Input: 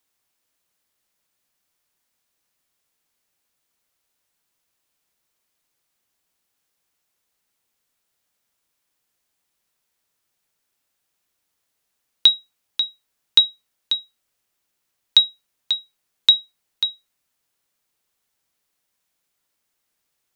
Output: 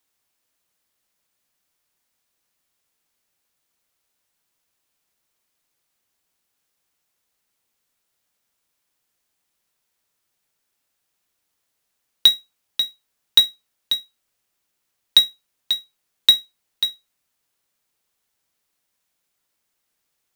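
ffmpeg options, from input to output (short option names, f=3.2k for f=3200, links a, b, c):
-af "acrusher=bits=3:mode=log:mix=0:aa=0.000001"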